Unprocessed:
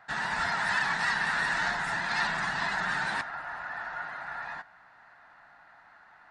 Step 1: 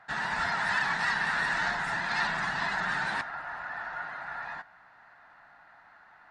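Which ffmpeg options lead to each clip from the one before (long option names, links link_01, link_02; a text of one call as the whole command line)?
ffmpeg -i in.wav -af "highshelf=frequency=8100:gain=-7" out.wav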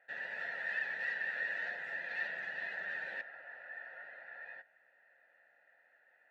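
ffmpeg -i in.wav -filter_complex "[0:a]asplit=3[link_01][link_02][link_03];[link_01]bandpass=frequency=530:width_type=q:width=8,volume=0dB[link_04];[link_02]bandpass=frequency=1840:width_type=q:width=8,volume=-6dB[link_05];[link_03]bandpass=frequency=2480:width_type=q:width=8,volume=-9dB[link_06];[link_04][link_05][link_06]amix=inputs=3:normalize=0,bandreject=frequency=5000:width=22,volume=1dB" out.wav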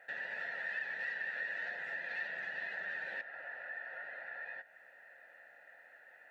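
ffmpeg -i in.wav -af "acompressor=threshold=-56dB:ratio=2,volume=9.5dB" out.wav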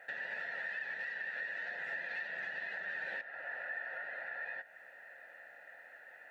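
ffmpeg -i in.wav -af "alimiter=level_in=11.5dB:limit=-24dB:level=0:latency=1:release=370,volume=-11.5dB,volume=4dB" out.wav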